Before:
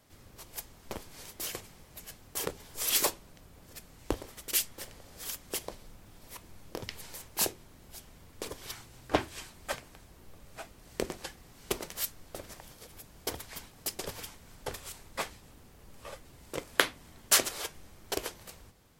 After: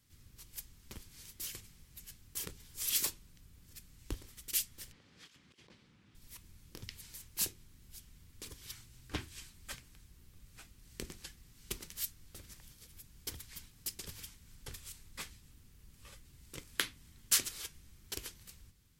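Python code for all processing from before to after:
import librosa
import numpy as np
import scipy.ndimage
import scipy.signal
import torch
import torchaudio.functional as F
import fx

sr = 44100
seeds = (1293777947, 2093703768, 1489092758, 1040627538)

y = fx.chain(x, sr, fx.over_compress(threshold_db=-42.0, ratio=-0.5),
    fx.bandpass_edges(low_hz=180.0, high_hz=3100.0), at=(4.92, 6.15))
y = fx.tone_stack(y, sr, knobs='6-0-2')
y = fx.notch(y, sr, hz=650.0, q=13.0)
y = y * 10.0 ** (10.0 / 20.0)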